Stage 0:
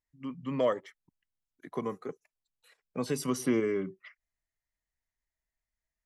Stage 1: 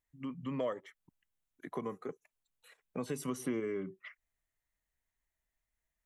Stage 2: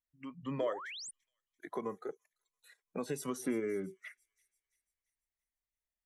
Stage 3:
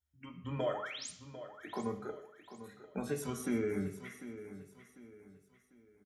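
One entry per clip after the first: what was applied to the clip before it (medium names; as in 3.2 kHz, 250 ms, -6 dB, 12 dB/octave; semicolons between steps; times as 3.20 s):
compression 2:1, threshold -43 dBFS, peak gain reduction 11.5 dB; peaking EQ 4.9 kHz -9.5 dB 0.38 oct; trim +2.5 dB
spectral noise reduction 12 dB; feedback echo behind a high-pass 339 ms, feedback 46%, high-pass 5.4 kHz, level -16 dB; painted sound rise, 0.58–1.11 s, 220–9900 Hz -46 dBFS; trim +1 dB
feedback delay 747 ms, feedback 36%, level -13 dB; reverberation RT60 0.70 s, pre-delay 3 ms, DRR 5 dB; trim +2.5 dB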